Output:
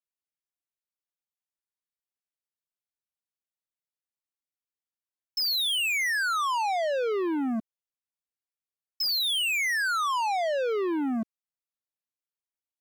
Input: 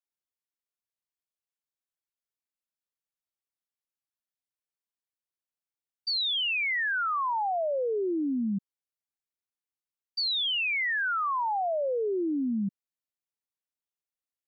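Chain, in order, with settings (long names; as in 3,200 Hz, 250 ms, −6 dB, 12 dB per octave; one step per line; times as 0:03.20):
speed change +13%
dynamic equaliser 130 Hz, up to −7 dB, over −48 dBFS, Q 0.87
leveller curve on the samples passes 3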